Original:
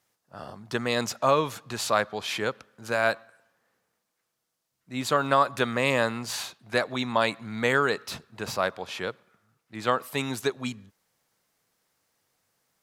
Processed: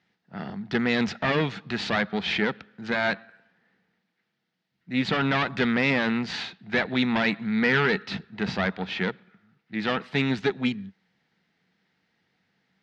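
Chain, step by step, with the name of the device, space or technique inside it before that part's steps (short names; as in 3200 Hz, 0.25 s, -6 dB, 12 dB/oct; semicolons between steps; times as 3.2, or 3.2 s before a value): guitar amplifier (tube stage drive 25 dB, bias 0.7; tone controls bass +4 dB, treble -1 dB; speaker cabinet 83–4200 Hz, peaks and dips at 110 Hz -8 dB, 190 Hz +9 dB, 570 Hz -9 dB, 1100 Hz -10 dB, 1900 Hz +5 dB); gain +8.5 dB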